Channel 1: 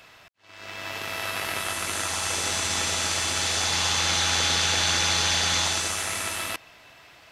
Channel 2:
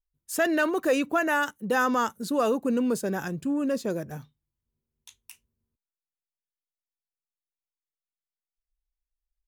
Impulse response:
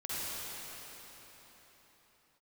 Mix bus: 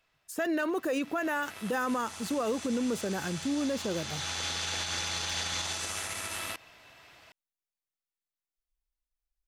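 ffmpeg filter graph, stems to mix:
-filter_complex "[0:a]volume=-4.5dB,afade=t=in:st=0.9:d=0.77:silence=0.421697,afade=t=in:st=4.09:d=0.73:silence=0.281838[a];[1:a]deesser=0.65,volume=-2dB[b];[a][b]amix=inputs=2:normalize=0,alimiter=limit=-23dB:level=0:latency=1:release=62"

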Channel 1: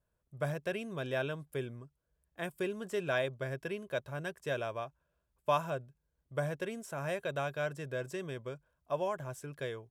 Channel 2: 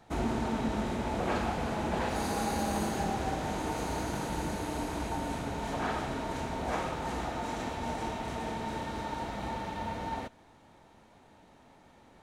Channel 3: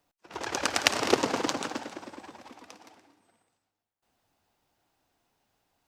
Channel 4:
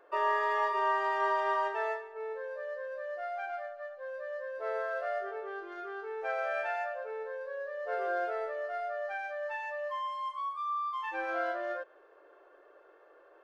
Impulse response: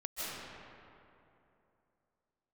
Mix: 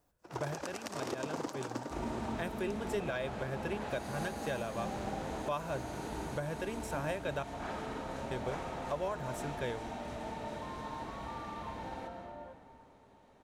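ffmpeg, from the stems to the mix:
-filter_complex "[0:a]volume=2dB,asplit=3[a][b][c];[a]atrim=end=7.43,asetpts=PTS-STARTPTS,afade=t=out:st=7.426:d=0.004:c=hsin[d];[b]atrim=start=7.43:end=8.31,asetpts=PTS-STARTPTS,volume=0[e];[c]atrim=start=8.31,asetpts=PTS-STARTPTS,afade=t=in:d=0.004:c=hsin[f];[d][e][f]concat=n=3:v=0:a=1[g];[1:a]adelay=1800,volume=-10.5dB,asplit=2[h][i];[i]volume=-4.5dB[j];[2:a]equalizer=f=2.9k:w=0.67:g=-9.5,volume=0.5dB[k];[3:a]lowpass=f=1.1k:w=0.5412,lowpass=f=1.1k:w=1.3066,acompressor=threshold=-38dB:ratio=6,adelay=700,volume=-8.5dB[l];[4:a]atrim=start_sample=2205[m];[j][m]afir=irnorm=-1:irlink=0[n];[g][h][k][l][n]amix=inputs=5:normalize=0,alimiter=level_in=1.5dB:limit=-24dB:level=0:latency=1:release=314,volume=-1.5dB"

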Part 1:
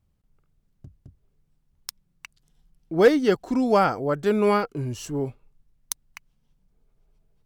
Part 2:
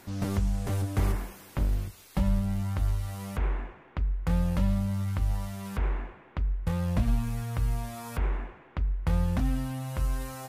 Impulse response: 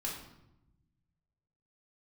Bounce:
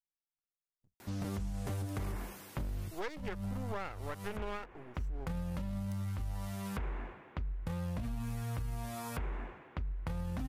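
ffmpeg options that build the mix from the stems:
-filter_complex "[0:a]afwtdn=0.0158,highpass=f=1.1k:p=1,aeval=exprs='max(val(0),0)':c=same,volume=-4.5dB,asplit=2[a][b];[1:a]highpass=f=46:p=1,alimiter=limit=-23.5dB:level=0:latency=1:release=23,adelay=1000,volume=-1.5dB[c];[b]apad=whole_len=506332[d];[c][d]sidechaincompress=threshold=-39dB:ratio=5:attack=24:release=289[e];[a][e]amix=inputs=2:normalize=0,acompressor=threshold=-34dB:ratio=6"

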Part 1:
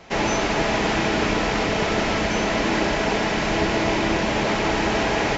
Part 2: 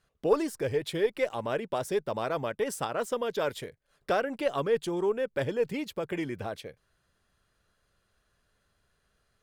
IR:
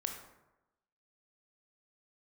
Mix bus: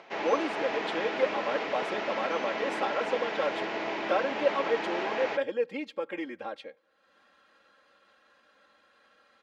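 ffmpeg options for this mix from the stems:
-filter_complex "[0:a]volume=-9.5dB[a];[1:a]aecho=1:1:3.7:0.93,volume=-3dB,asplit=2[b][c];[c]volume=-22dB[d];[2:a]atrim=start_sample=2205[e];[d][e]afir=irnorm=-1:irlink=0[f];[a][b][f]amix=inputs=3:normalize=0,acompressor=mode=upward:threshold=-45dB:ratio=2.5,highpass=360,lowpass=3.4k"

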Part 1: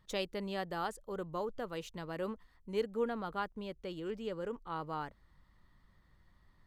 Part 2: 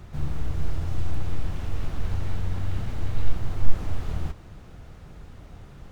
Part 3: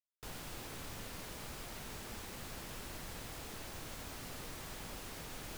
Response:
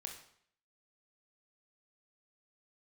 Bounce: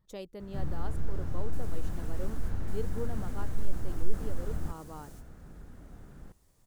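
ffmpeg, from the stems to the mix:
-filter_complex "[0:a]volume=-2.5dB,asplit=2[a][b];[1:a]equalizer=f=100:t=o:w=0.67:g=-7,equalizer=f=250:t=o:w=0.67:g=4,equalizer=f=1.6k:t=o:w=0.67:g=8,acontrast=85,adelay=400,volume=-10.5dB[c];[2:a]equalizer=f=7.4k:t=o:w=1.5:g=7.5,alimiter=level_in=14.5dB:limit=-24dB:level=0:latency=1:release=395,volume=-14.5dB,adelay=1300,volume=-5dB,asplit=2[d][e];[e]volume=-10.5dB[f];[b]apad=whole_len=303258[g];[d][g]sidechaingate=range=-33dB:threshold=-58dB:ratio=16:detection=peak[h];[3:a]atrim=start_sample=2205[i];[f][i]afir=irnorm=-1:irlink=0[j];[a][c][h][j]amix=inputs=4:normalize=0,equalizer=f=2.6k:w=0.4:g=-10.5"

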